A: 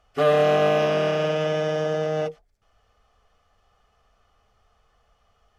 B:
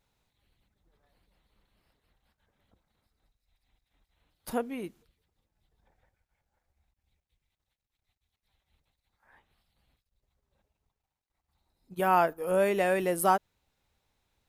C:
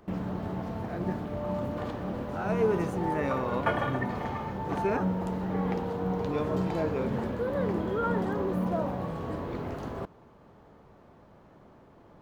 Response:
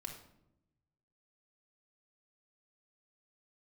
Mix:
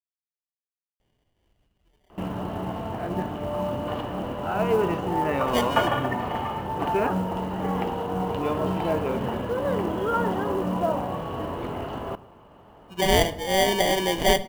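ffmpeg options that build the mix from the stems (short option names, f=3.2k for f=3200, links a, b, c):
-filter_complex "[1:a]acrusher=samples=33:mix=1:aa=0.000001,adelay=1000,volume=1dB,asplit=2[a][b];[b]volume=-3.5dB[c];[2:a]lowpass=4.2k,equalizer=f=870:w=0.99:g=6,adelay=2100,volume=0dB,asplit=2[d][e];[e]volume=-8.5dB[f];[3:a]atrim=start_sample=2205[g];[c][f]amix=inputs=2:normalize=0[h];[h][g]afir=irnorm=-1:irlink=0[i];[a][d][i]amix=inputs=3:normalize=0,equalizer=f=2.9k:w=7.1:g=15,acrusher=bits=7:mode=log:mix=0:aa=0.000001"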